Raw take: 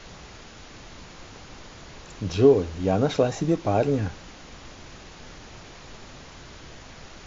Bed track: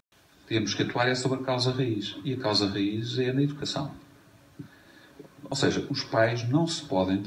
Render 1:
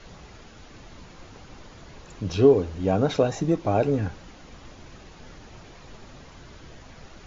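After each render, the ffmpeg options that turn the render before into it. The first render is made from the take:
ffmpeg -i in.wav -af "afftdn=noise_reduction=6:noise_floor=-45" out.wav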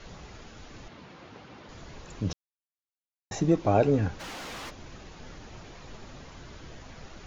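ffmpeg -i in.wav -filter_complex "[0:a]asettb=1/sr,asplit=3[link_01][link_02][link_03];[link_01]atrim=end=0.884[link_04];[link_02]atrim=start=0.88:end=1.69,asetpts=PTS-STARTPTS,afade=type=in:duration=0.004:curve=qsin,afade=type=out:start_time=0.806:duration=0.004:curve=qsin,highpass=130,lowpass=4000[link_05];[link_03]atrim=start=1.686[link_06];[link_04][link_05]acrossfade=duration=0.004:curve1=hsin:curve2=qsin[link_07];[link_07][link_06]acrossfade=duration=0.004:curve1=qsin:curve2=hsin,asplit=3[link_08][link_09][link_10];[link_08]afade=type=out:start_time=4.19:duration=0.02[link_11];[link_09]asplit=2[link_12][link_13];[link_13]highpass=frequency=720:poles=1,volume=32dB,asoftclip=type=tanh:threshold=-33dB[link_14];[link_12][link_14]amix=inputs=2:normalize=0,lowpass=frequency=5400:poles=1,volume=-6dB,afade=type=in:start_time=4.19:duration=0.02,afade=type=out:start_time=4.69:duration=0.02[link_15];[link_10]afade=type=in:start_time=4.69:duration=0.02[link_16];[link_11][link_15][link_16]amix=inputs=3:normalize=0,asplit=3[link_17][link_18][link_19];[link_17]atrim=end=2.33,asetpts=PTS-STARTPTS,afade=type=out:start_time=2.326:duration=0.004:curve=hsin[link_20];[link_18]atrim=start=2.33:end=3.31,asetpts=PTS-STARTPTS,volume=0[link_21];[link_19]atrim=start=3.31,asetpts=PTS-STARTPTS,afade=type=in:duration=0.004:curve=hsin[link_22];[link_20][link_21][link_22]concat=n=3:v=0:a=1" out.wav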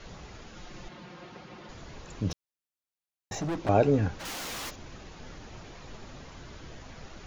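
ffmpeg -i in.wav -filter_complex "[0:a]asettb=1/sr,asplit=3[link_01][link_02][link_03];[link_01]atrim=end=0.534[link_04];[link_02]atrim=start=0.53:end=1.72,asetpts=PTS-STARTPTS,afade=type=in:duration=0.004:curve=qsin,afade=type=out:start_time=1.186:duration=0.004:curve=qsin,aecho=1:1:5.6:0.65,atrim=end_sample=52479[link_05];[link_03]atrim=start=1.716[link_06];[link_04][link_05]acrossfade=duration=0.004:curve1=hsin:curve2=qsin[link_07];[link_07][link_06]acrossfade=duration=0.004:curve1=qsin:curve2=hsin,asettb=1/sr,asplit=3[link_08][link_09][link_10];[link_08]atrim=end=2.304[link_11];[link_09]atrim=start=2.3:end=3.69,asetpts=PTS-STARTPTS,afade=type=in:duration=0.004:curve=qsin,afade=type=out:start_time=1.386:duration=0.004:curve=qsin,asoftclip=type=hard:threshold=-28.5dB[link_12];[link_10]atrim=start=3.686[link_13];[link_11][link_12]acrossfade=duration=0.004:curve1=hsin:curve2=qsin[link_14];[link_14][link_13]acrossfade=duration=0.004:curve1=qsin:curve2=hsin,asettb=1/sr,asplit=3[link_15][link_16][link_17];[link_15]atrim=end=4.254[link_18];[link_16]atrim=start=4.25:end=4.76,asetpts=PTS-STARTPTS,afade=type=in:duration=0.004:curve=qsin,afade=type=out:start_time=0.506:duration=0.004:curve=qsin,aemphasis=mode=production:type=50kf[link_19];[link_17]atrim=start=4.756[link_20];[link_18][link_19]acrossfade=duration=0.004:curve1=hsin:curve2=qsin[link_21];[link_21][link_20]acrossfade=duration=0.004:curve1=qsin:curve2=hsin" out.wav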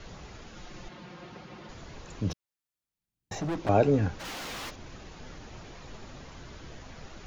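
ffmpeg -i in.wav -filter_complex "[0:a]acrossover=split=230|5100[link_01][link_02][link_03];[link_01]acompressor=mode=upward:threshold=-46dB:ratio=2.5[link_04];[link_03]alimiter=level_in=16dB:limit=-24dB:level=0:latency=1:release=196,volume=-16dB[link_05];[link_04][link_02][link_05]amix=inputs=3:normalize=0" out.wav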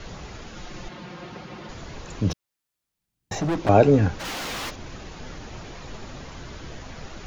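ffmpeg -i in.wav -af "volume=7dB" out.wav

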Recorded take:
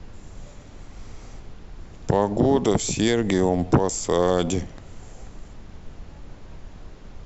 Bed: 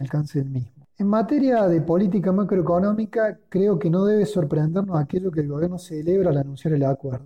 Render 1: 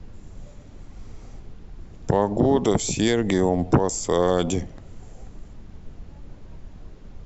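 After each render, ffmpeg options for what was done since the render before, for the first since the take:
ffmpeg -i in.wav -af "afftdn=noise_reduction=6:noise_floor=-44" out.wav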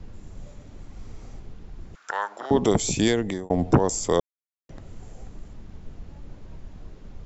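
ffmpeg -i in.wav -filter_complex "[0:a]asettb=1/sr,asplit=3[link_01][link_02][link_03];[link_01]atrim=end=1.954[link_04];[link_02]atrim=start=1.95:end=2.51,asetpts=PTS-STARTPTS,afade=type=in:duration=0.004:curve=qsin,afade=type=out:start_time=0.556:duration=0.004:curve=qsin,highpass=frequency=1400:width_type=q:width=5[link_05];[link_03]atrim=start=2.506[link_06];[link_04][link_05]acrossfade=duration=0.004:curve1=hsin:curve2=qsin[link_07];[link_07][link_06]acrossfade=duration=0.004:curve1=qsin:curve2=hsin,asplit=4[link_08][link_09][link_10][link_11];[link_08]atrim=end=3.5,asetpts=PTS-STARTPTS,afade=type=out:start_time=3.08:duration=0.42[link_12];[link_09]atrim=start=3.5:end=4.2,asetpts=PTS-STARTPTS,afade=type=in:duration=0.004:curve=hsin,afade=type=out:start_time=0.696:duration=0.004:curve=hsin[link_13];[link_10]atrim=start=4.2:end=4.69,asetpts=PTS-STARTPTS,volume=0[link_14];[link_11]atrim=start=4.69,asetpts=PTS-STARTPTS,afade=type=in:duration=0.004:curve=hsin[link_15];[link_12][link_13][link_14][link_15]concat=n=4:v=0:a=1" out.wav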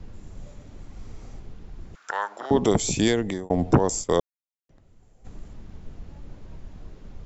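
ffmpeg -i in.wav -filter_complex "[0:a]asplit=3[link_01][link_02][link_03];[link_01]afade=type=out:start_time=4.01:duration=0.02[link_04];[link_02]agate=range=-15dB:threshold=-29dB:ratio=16:release=100:detection=peak,afade=type=in:start_time=4.01:duration=0.02,afade=type=out:start_time=5.24:duration=0.02[link_05];[link_03]afade=type=in:start_time=5.24:duration=0.02[link_06];[link_04][link_05][link_06]amix=inputs=3:normalize=0" out.wav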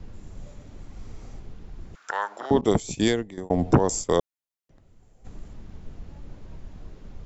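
ffmpeg -i in.wav -filter_complex "[0:a]asettb=1/sr,asplit=3[link_01][link_02][link_03];[link_01]atrim=end=2.614[link_04];[link_02]atrim=start=2.61:end=3.38,asetpts=PTS-STARTPTS,afade=type=in:duration=0.004:curve=qsin,afade=type=out:start_time=0.766:duration=0.004:curve=qsin,agate=range=-33dB:threshold=-20dB:ratio=3:release=100:detection=peak[link_05];[link_03]atrim=start=3.376[link_06];[link_04][link_05]acrossfade=duration=0.004:curve1=hsin:curve2=qsin[link_07];[link_07][link_06]acrossfade=duration=0.004:curve1=qsin:curve2=hsin" out.wav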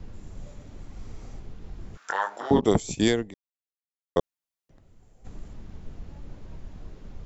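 ffmpeg -i in.wav -filter_complex "[0:a]asettb=1/sr,asplit=3[link_01][link_02][link_03];[link_01]atrim=end=1.604[link_04];[link_02]atrim=start=1.6:end=2.6,asetpts=PTS-STARTPTS,afade=type=in:duration=0.004:curve=qsin,afade=type=out:start_time=0.996:duration=0.004:curve=qsin,asplit=2[link_05][link_06];[link_06]adelay=21,volume=-5dB[link_07];[link_05][link_07]amix=inputs=2:normalize=0,atrim=end_sample=44100[link_08];[link_03]atrim=start=2.596[link_09];[link_04][link_08]acrossfade=duration=0.004:curve1=hsin:curve2=qsin[link_10];[link_10][link_09]acrossfade=duration=0.004:curve1=qsin:curve2=hsin,asplit=3[link_11][link_12][link_13];[link_11]atrim=end=3.34,asetpts=PTS-STARTPTS,afade=type=out:start_time=3.336:duration=0.004:curve=hsin[link_14];[link_12]atrim=start=3.34:end=4.16,asetpts=PTS-STARTPTS,volume=0[link_15];[link_13]atrim=start=4.16,asetpts=PTS-STARTPTS,afade=type=in:duration=0.004:curve=hsin[link_16];[link_14][link_15][link_16]concat=n=3:v=0:a=1" out.wav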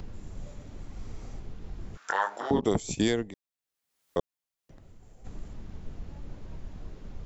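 ffmpeg -i in.wav -af "alimiter=limit=-13.5dB:level=0:latency=1:release=187,acompressor=mode=upward:threshold=-44dB:ratio=2.5" out.wav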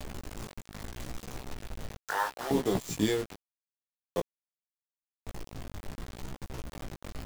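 ffmpeg -i in.wav -af "acrusher=bits=5:mix=0:aa=0.000001,flanger=delay=15:depth=4.4:speed=0.78" out.wav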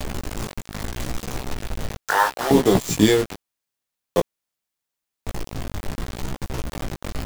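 ffmpeg -i in.wav -af "volume=12dB" out.wav

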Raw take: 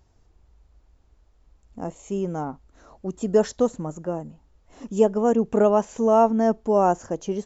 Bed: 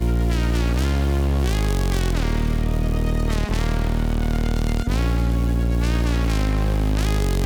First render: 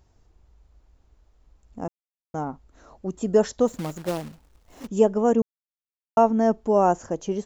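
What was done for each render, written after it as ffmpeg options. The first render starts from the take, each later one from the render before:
ffmpeg -i in.wav -filter_complex "[0:a]asplit=3[link_01][link_02][link_03];[link_01]afade=type=out:start_time=3.67:duration=0.02[link_04];[link_02]acrusher=bits=2:mode=log:mix=0:aa=0.000001,afade=type=in:start_time=3.67:duration=0.02,afade=type=out:start_time=4.86:duration=0.02[link_05];[link_03]afade=type=in:start_time=4.86:duration=0.02[link_06];[link_04][link_05][link_06]amix=inputs=3:normalize=0,asplit=5[link_07][link_08][link_09][link_10][link_11];[link_07]atrim=end=1.88,asetpts=PTS-STARTPTS,afade=type=out:start_time=1.876:duration=0.004:curve=hsin[link_12];[link_08]atrim=start=1.88:end=2.34,asetpts=PTS-STARTPTS,volume=0[link_13];[link_09]atrim=start=2.34:end=5.42,asetpts=PTS-STARTPTS,afade=type=in:duration=0.004:curve=hsin,afade=type=out:start_time=3.076:duration=0.004:curve=hsin[link_14];[link_10]atrim=start=5.42:end=6.17,asetpts=PTS-STARTPTS,volume=0[link_15];[link_11]atrim=start=6.17,asetpts=PTS-STARTPTS,afade=type=in:duration=0.004:curve=hsin[link_16];[link_12][link_13][link_14][link_15][link_16]concat=n=5:v=0:a=1" out.wav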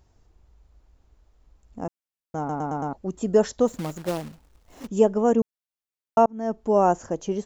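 ffmpeg -i in.wav -filter_complex "[0:a]asplit=7[link_01][link_02][link_03][link_04][link_05][link_06][link_07];[link_01]atrim=end=2.492[link_08];[link_02]atrim=start=2.378:end=2.492[link_09];[link_03]atrim=start=2.378:end=2.492[link_10];[link_04]atrim=start=2.378:end=2.492[link_11];[link_05]atrim=start=2.378:end=2.492[link_12];[link_06]atrim=start=2.928:end=6.26,asetpts=PTS-STARTPTS,afade=type=out:start_time=3.328:duration=0.004:curve=hsin[link_13];[link_07]atrim=start=6.26,asetpts=PTS-STARTPTS,afade=type=in:duration=0.47[link_14];[link_08][link_09]acrossfade=duration=0.004:curve1=hsin:curve2=hsin[link_15];[link_15][link_10]acrossfade=duration=0.004:curve1=hsin:curve2=hsin[link_16];[link_16][link_11]acrossfade=duration=0.004:curve1=hsin:curve2=hsin[link_17];[link_17][link_12]acrossfade=duration=0.004:curve1=hsin:curve2=hsin[link_18];[link_13][link_14]concat=n=2:v=0:a=1[link_19];[link_18][link_19]acrossfade=duration=0.004:curve1=hsin:curve2=hsin" out.wav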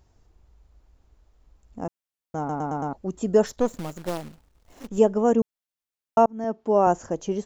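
ffmpeg -i in.wav -filter_complex "[0:a]asettb=1/sr,asplit=3[link_01][link_02][link_03];[link_01]atrim=end=3.464[link_04];[link_02]atrim=start=3.46:end=4.98,asetpts=PTS-STARTPTS,afade=type=in:duration=0.004:curve=qsin,afade=type=out:start_time=1.516:duration=0.004:curve=qsin,aeval=exprs='if(lt(val(0),0),0.447*val(0),val(0))':channel_layout=same[link_05];[link_03]atrim=start=4.976[link_06];[link_04][link_05]acrossfade=duration=0.004:curve1=hsin:curve2=qsin[link_07];[link_07][link_06]acrossfade=duration=0.004:curve1=qsin:curve2=hsin,asettb=1/sr,asplit=3[link_08][link_09][link_10];[link_08]atrim=end=6.444[link_11];[link_09]atrim=start=6.44:end=6.87,asetpts=PTS-STARTPTS,afade=type=in:duration=0.004:curve=qsin,afade=type=out:start_time=0.426:duration=0.004:curve=qsin,highpass=180,lowpass=5100[link_12];[link_10]atrim=start=6.866[link_13];[link_11][link_12]acrossfade=duration=0.004:curve1=hsin:curve2=qsin[link_14];[link_14][link_13]acrossfade=duration=0.004:curve1=qsin:curve2=hsin" out.wav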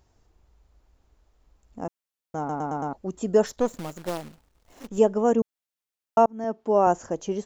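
ffmpeg -i in.wav -af "lowshelf=frequency=210:gain=-4.5" out.wav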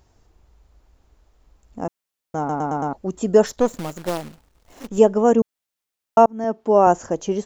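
ffmpeg -i in.wav -af "volume=5.5dB" out.wav

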